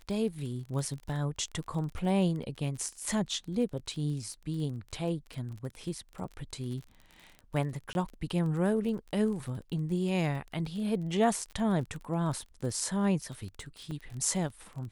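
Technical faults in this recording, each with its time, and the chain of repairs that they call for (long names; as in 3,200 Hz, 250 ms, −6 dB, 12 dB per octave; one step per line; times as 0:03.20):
surface crackle 32 per second −38 dBFS
0:07.93–0:07.95: drop-out 21 ms
0:13.91: drop-out 5 ms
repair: click removal
repair the gap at 0:07.93, 21 ms
repair the gap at 0:13.91, 5 ms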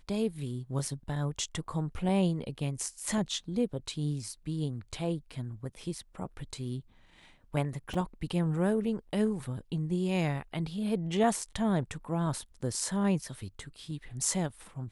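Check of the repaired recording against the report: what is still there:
none of them is left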